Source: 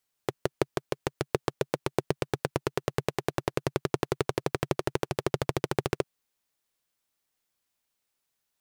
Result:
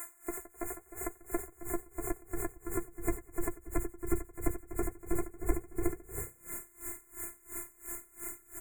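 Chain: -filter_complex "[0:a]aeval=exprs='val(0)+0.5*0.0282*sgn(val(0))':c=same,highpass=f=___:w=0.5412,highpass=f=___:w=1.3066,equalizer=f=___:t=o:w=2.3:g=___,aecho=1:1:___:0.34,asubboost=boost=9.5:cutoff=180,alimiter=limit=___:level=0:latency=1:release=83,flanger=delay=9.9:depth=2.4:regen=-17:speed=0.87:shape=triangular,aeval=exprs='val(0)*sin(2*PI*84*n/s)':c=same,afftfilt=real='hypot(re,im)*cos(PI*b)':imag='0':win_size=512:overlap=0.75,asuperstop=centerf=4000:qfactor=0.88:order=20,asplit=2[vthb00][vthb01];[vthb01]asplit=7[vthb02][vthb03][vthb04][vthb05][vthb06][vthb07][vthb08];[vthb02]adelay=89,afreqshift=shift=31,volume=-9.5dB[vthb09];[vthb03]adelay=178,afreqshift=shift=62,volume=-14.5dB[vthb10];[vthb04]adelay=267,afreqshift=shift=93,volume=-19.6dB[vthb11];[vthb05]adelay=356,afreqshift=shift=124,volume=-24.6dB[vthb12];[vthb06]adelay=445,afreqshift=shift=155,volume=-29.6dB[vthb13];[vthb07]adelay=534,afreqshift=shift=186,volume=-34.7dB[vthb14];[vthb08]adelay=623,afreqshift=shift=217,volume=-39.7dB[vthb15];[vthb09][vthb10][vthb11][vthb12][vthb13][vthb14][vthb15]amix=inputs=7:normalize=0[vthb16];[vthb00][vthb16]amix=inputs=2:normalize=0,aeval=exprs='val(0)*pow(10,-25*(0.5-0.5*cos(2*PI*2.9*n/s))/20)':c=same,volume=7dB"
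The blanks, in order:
93, 93, 7.5k, 3, 6.8, -10.5dB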